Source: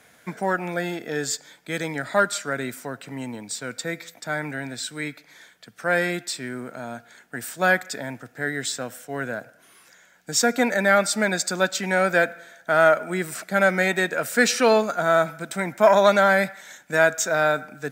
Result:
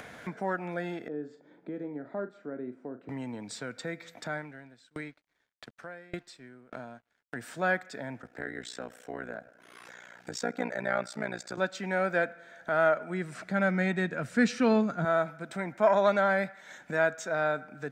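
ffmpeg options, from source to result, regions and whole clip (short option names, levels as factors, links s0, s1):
-filter_complex "[0:a]asettb=1/sr,asplit=3[s0][s1][s2];[s0]atrim=end=1.084[s3];[s1]atrim=start=1.08:end=3.09,asetpts=PTS-STARTPTS,afade=t=in:d=0.004:c=qsin,afade=t=out:st=2.006:d=0.004:c=qsin,bandpass=f=320:t=q:w=1.6,asplit=2[s4][s5];[s5]adelay=40,volume=0.282[s6];[s4][s6]amix=inputs=2:normalize=0,atrim=end_sample=88641[s7];[s2]atrim=start=3.086[s8];[s3][s7]acrossfade=d=0.004:c1=hsin:c2=qsin[s9];[s9][s8]acrossfade=d=0.004:c1=qsin:c2=hsin,asettb=1/sr,asplit=3[s10][s11][s12];[s10]atrim=end=4.374[s13];[s11]atrim=start=4.37:end=7.36,asetpts=PTS-STARTPTS,afade=t=in:d=0.004:c=qsin,afade=t=out:st=2.986:d=0.004:c=qsin,aeval=exprs='sgn(val(0))*max(abs(val(0))-0.00316,0)':c=same,aeval=exprs='val(0)*pow(10,-38*if(lt(mod(1.7*n/s,1),2*abs(1.7)/1000),1-mod(1.7*n/s,1)/(2*abs(1.7)/1000),(mod(1.7*n/s,1)-2*abs(1.7)/1000)/(1-2*abs(1.7)/1000))/20)':c=same[s14];[s12]atrim=start=7.356[s15];[s13][s14]acrossfade=d=0.004:c1=hsin:c2=qsin[s16];[s16][s15]acrossfade=d=0.004:c1=qsin:c2=hsin,asettb=1/sr,asplit=3[s17][s18][s19];[s17]atrim=end=8.224[s20];[s18]atrim=start=8.22:end=11.58,asetpts=PTS-STARTPTS,afade=t=in:d=0.004:c=qsin,afade=t=out:st=3.356:d=0.004:c=qsin,highpass=170,tremolo=f=60:d=0.947[s21];[s19]atrim=start=11.576[s22];[s20][s21]acrossfade=d=0.004:c1=hsin:c2=qsin[s23];[s23][s22]acrossfade=d=0.004:c1=qsin:c2=hsin,asettb=1/sr,asplit=3[s24][s25][s26];[s24]atrim=end=12.904[s27];[s25]atrim=start=12.9:end=15.05,asetpts=PTS-STARTPTS,afade=t=in:d=0.004:c=qsin,afade=t=out:st=2.146:d=0.004:c=qsin,asubboost=boost=10:cutoff=230,lowpass=11000[s28];[s26]atrim=start=15.046[s29];[s27][s28]acrossfade=d=0.004:c1=hsin:c2=qsin[s30];[s30][s29]acrossfade=d=0.004:c1=qsin:c2=hsin,aemphasis=mode=reproduction:type=75fm,acompressor=mode=upward:threshold=0.0631:ratio=2.5,volume=0.398"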